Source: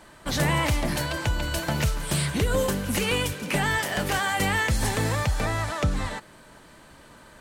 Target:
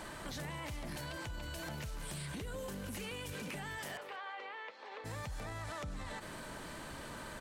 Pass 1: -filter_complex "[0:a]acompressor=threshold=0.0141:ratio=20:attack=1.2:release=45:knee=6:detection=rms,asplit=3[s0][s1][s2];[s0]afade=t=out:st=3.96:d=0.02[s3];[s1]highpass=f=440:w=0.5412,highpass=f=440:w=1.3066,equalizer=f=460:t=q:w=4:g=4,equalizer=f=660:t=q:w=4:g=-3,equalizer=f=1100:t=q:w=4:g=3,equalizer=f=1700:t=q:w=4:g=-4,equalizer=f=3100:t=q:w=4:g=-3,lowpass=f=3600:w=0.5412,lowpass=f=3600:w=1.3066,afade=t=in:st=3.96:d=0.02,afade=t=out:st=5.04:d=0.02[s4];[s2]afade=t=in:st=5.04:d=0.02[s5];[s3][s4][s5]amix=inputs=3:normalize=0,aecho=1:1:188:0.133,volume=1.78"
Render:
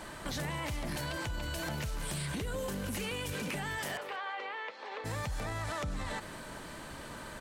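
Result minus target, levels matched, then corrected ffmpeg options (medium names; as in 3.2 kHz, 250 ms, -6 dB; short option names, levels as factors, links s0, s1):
compression: peak gain reduction -6 dB
-filter_complex "[0:a]acompressor=threshold=0.00668:ratio=20:attack=1.2:release=45:knee=6:detection=rms,asplit=3[s0][s1][s2];[s0]afade=t=out:st=3.96:d=0.02[s3];[s1]highpass=f=440:w=0.5412,highpass=f=440:w=1.3066,equalizer=f=460:t=q:w=4:g=4,equalizer=f=660:t=q:w=4:g=-3,equalizer=f=1100:t=q:w=4:g=3,equalizer=f=1700:t=q:w=4:g=-4,equalizer=f=3100:t=q:w=4:g=-3,lowpass=f=3600:w=0.5412,lowpass=f=3600:w=1.3066,afade=t=in:st=3.96:d=0.02,afade=t=out:st=5.04:d=0.02[s4];[s2]afade=t=in:st=5.04:d=0.02[s5];[s3][s4][s5]amix=inputs=3:normalize=0,aecho=1:1:188:0.133,volume=1.78"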